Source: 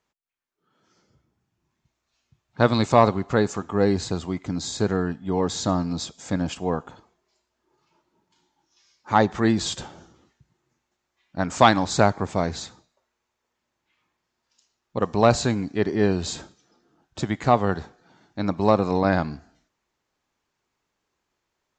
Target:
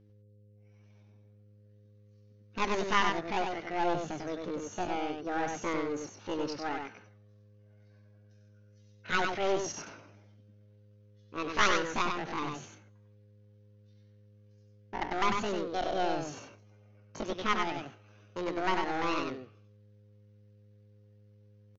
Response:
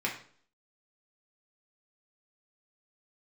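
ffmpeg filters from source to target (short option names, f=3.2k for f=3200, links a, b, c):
-af "highpass=f=77:p=1,aresample=8000,aeval=exprs='clip(val(0),-1,0.0562)':c=same,aresample=44100,aeval=exprs='val(0)+0.00224*(sin(2*PI*60*n/s)+sin(2*PI*2*60*n/s)/2+sin(2*PI*3*60*n/s)/3+sin(2*PI*4*60*n/s)/4+sin(2*PI*5*60*n/s)/5)':c=same,asetrate=76340,aresample=44100,atempo=0.577676,aecho=1:1:98:0.596,volume=-6.5dB"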